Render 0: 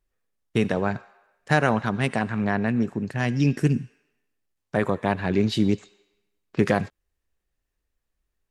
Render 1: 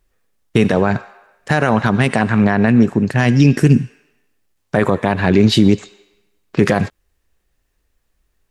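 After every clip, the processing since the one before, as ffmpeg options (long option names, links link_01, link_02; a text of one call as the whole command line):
ffmpeg -i in.wav -af "alimiter=level_in=13.5dB:limit=-1dB:release=50:level=0:latency=1,volume=-1dB" out.wav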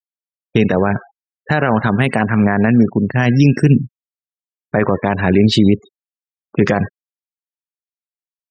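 ffmpeg -i in.wav -af "afftfilt=real='re*gte(hypot(re,im),0.0501)':imag='im*gte(hypot(re,im),0.0501)':win_size=1024:overlap=0.75" out.wav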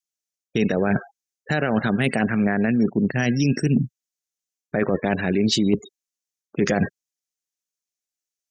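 ffmpeg -i in.wav -af "equalizer=frequency=100:width_type=o:width=0.67:gain=-9,equalizer=frequency=1000:width_type=o:width=0.67:gain=-10,equalizer=frequency=6300:width_type=o:width=0.67:gain=12,areverse,acompressor=threshold=-20dB:ratio=6,areverse,volume=3dB" out.wav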